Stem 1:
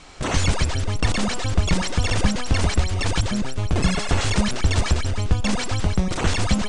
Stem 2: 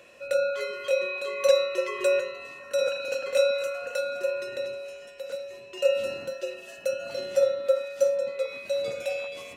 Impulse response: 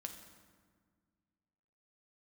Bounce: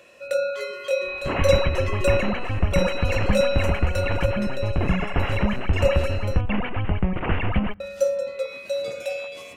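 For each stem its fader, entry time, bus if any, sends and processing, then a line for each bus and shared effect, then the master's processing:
−1.5 dB, 1.05 s, send −19 dB, Chebyshev low-pass filter 2,900 Hz, order 6
+0.5 dB, 0.00 s, muted 0:06.41–0:07.80, send −14.5 dB, no processing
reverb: on, RT60 1.7 s, pre-delay 5 ms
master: no processing

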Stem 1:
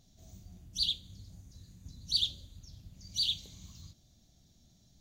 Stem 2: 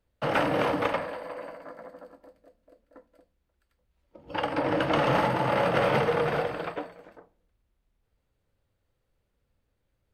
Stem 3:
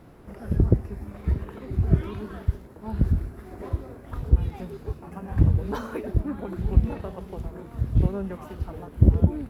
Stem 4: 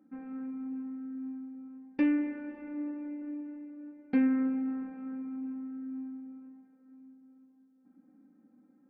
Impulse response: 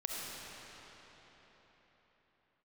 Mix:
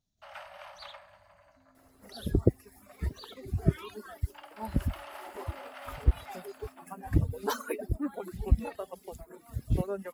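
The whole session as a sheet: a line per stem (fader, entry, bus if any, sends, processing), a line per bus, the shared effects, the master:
−19.5 dB, 0.00 s, no send, no processing
−19.0 dB, 0.00 s, no send, Chebyshev high-pass filter 560 Hz, order 10; spectral tilt +1.5 dB per octave
+3.0 dB, 1.75 s, no send, spectral dynamics exaggerated over time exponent 1.5; reverb reduction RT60 0.78 s; bass and treble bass −7 dB, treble +11 dB
0:06.46 −21 dB → 0:06.99 −11 dB, 1.45 s, no send, downward compressor, threshold −44 dBFS, peak gain reduction 20 dB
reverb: not used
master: no processing

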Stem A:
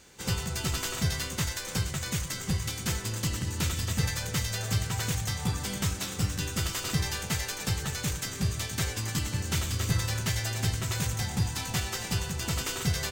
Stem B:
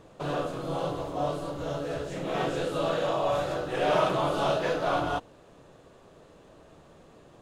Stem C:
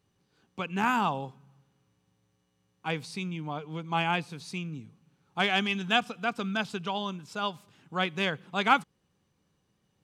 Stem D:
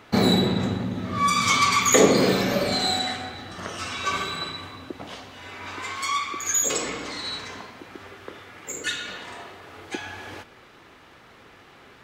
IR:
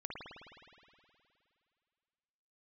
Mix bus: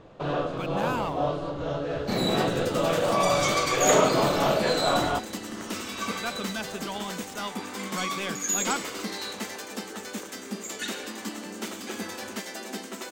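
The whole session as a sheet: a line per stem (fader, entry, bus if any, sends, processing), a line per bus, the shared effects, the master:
−1.0 dB, 2.10 s, no send, tape wow and flutter 16 cents; Butterworth high-pass 200 Hz 96 dB per octave; tilt shelving filter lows +5.5 dB, about 1,100 Hz
+2.5 dB, 0.00 s, no send, low-pass filter 4,500 Hz 12 dB per octave
−14.0 dB, 0.00 s, muted 0:03.49–0:06.09, no send, high-shelf EQ 8,400 Hz +9.5 dB; leveller curve on the samples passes 3
−7.5 dB, 1.95 s, no send, bass and treble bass −3 dB, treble +3 dB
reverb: not used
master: no processing

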